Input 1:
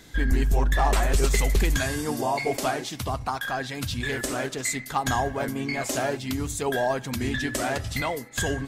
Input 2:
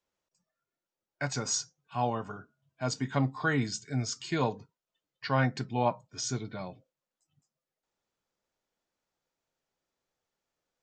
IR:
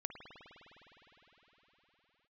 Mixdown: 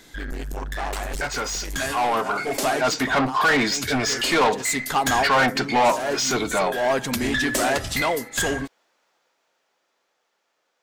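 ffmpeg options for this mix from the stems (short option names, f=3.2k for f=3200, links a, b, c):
-filter_complex "[0:a]asoftclip=type=tanh:threshold=-24dB,volume=1.5dB[a];[1:a]asplit=2[b][c];[c]highpass=f=720:p=1,volume=29dB,asoftclip=type=tanh:threshold=-13dB[d];[b][d]amix=inputs=2:normalize=0,lowpass=f=2.8k:p=1,volume=-6dB,volume=-4.5dB,asplit=2[e][f];[f]apad=whole_len=382590[g];[a][g]sidechaincompress=threshold=-37dB:ratio=6:attack=16:release=258[h];[h][e]amix=inputs=2:normalize=0,equalizer=f=88:t=o:w=1.7:g=-12,dynaudnorm=f=210:g=21:m=8dB"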